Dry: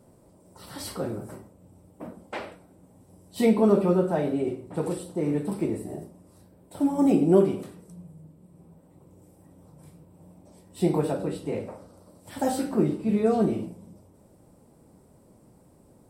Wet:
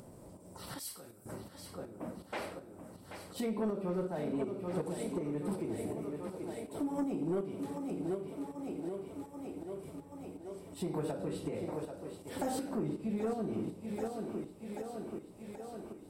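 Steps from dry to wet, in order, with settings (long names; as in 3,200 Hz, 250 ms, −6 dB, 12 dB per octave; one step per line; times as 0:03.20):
feedback echo with a high-pass in the loop 783 ms, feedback 72%, high-pass 180 Hz, level −11.5 dB
downward compressor 4 to 1, threshold −29 dBFS, peak gain reduction 14 dB
shaped tremolo saw up 2.7 Hz, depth 55%
upward compression, threshold −45 dBFS
0:00.79–0:01.26: first-order pre-emphasis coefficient 0.9
soft clipping −26.5 dBFS, distortion −18 dB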